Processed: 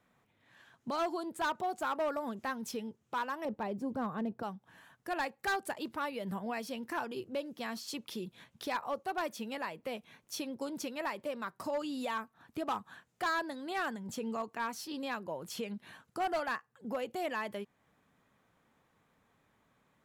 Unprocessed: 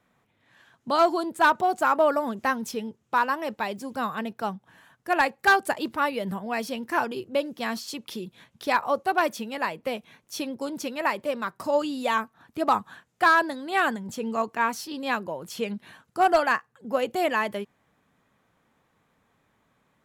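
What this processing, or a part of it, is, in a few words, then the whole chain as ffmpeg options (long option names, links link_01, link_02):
clipper into limiter: -filter_complex "[0:a]asettb=1/sr,asplit=3[link_01][link_02][link_03];[link_01]atrim=end=3.454[link_04];[link_02]atrim=start=3.45:end=4.43,asetpts=PTS-STARTPTS,afade=type=in:duration=0.004:curve=qsin,afade=type=out:start_time=0.976:duration=0.004:curve=qsin,tiltshelf=frequency=1200:gain=9.5[link_05];[link_03]atrim=start=4.426[link_06];[link_04][link_05]acrossfade=duration=0.004:curve1=hsin:curve2=qsin[link_07];[link_07][link_06]acrossfade=duration=0.004:curve1=qsin:curve2=hsin,asoftclip=type=hard:threshold=-17dB,alimiter=level_in=1dB:limit=-24dB:level=0:latency=1:release=321,volume=-1dB,volume=-3.5dB"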